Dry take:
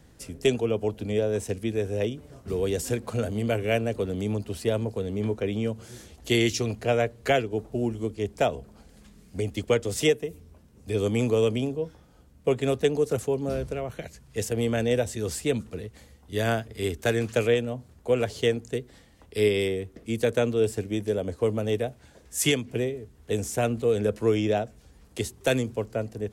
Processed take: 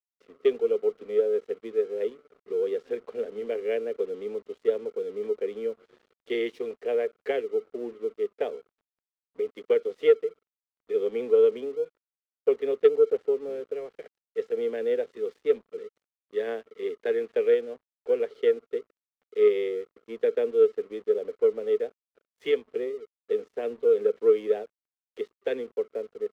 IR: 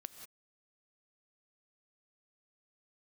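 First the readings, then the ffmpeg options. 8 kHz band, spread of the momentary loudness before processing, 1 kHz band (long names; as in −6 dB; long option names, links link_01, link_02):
below −25 dB, 10 LU, −10.0 dB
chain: -af "highpass=frequency=300:width=0.5412,highpass=frequency=300:width=1.3066,equalizer=frequency=310:width_type=q:width=4:gain=-9,equalizer=frequency=440:width_type=q:width=4:gain=10,equalizer=frequency=660:width_type=q:width=4:gain=-9,equalizer=frequency=940:width_type=q:width=4:gain=-8,equalizer=frequency=1400:width_type=q:width=4:gain=-10,equalizer=frequency=2600:width_type=q:width=4:gain=-9,lowpass=frequency=2800:width=0.5412,lowpass=frequency=2800:width=1.3066,aeval=exprs='sgn(val(0))*max(abs(val(0))-0.00299,0)':channel_layout=same,aeval=exprs='0.447*(cos(1*acos(clip(val(0)/0.447,-1,1)))-cos(1*PI/2))+0.0282*(cos(3*acos(clip(val(0)/0.447,-1,1)))-cos(3*PI/2))':channel_layout=same,volume=-1.5dB"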